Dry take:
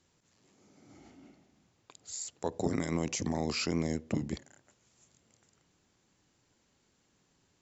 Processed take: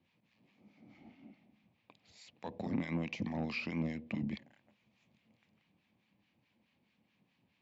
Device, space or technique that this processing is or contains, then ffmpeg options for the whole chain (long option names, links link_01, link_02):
guitar amplifier with harmonic tremolo: -filter_complex "[0:a]acrossover=split=980[link_01][link_02];[link_01]aeval=exprs='val(0)*(1-0.7/2+0.7/2*cos(2*PI*4.7*n/s))':channel_layout=same[link_03];[link_02]aeval=exprs='val(0)*(1-0.7/2-0.7/2*cos(2*PI*4.7*n/s))':channel_layout=same[link_04];[link_03][link_04]amix=inputs=2:normalize=0,asoftclip=type=tanh:threshold=-26dB,highpass=90,equalizer=frequency=210:width_type=q:width=4:gain=8,equalizer=frequency=400:width_type=q:width=4:gain=-8,equalizer=frequency=1400:width_type=q:width=4:gain=-9,equalizer=frequency=2400:width_type=q:width=4:gain=8,lowpass=frequency=3800:width=0.5412,lowpass=frequency=3800:width=1.3066"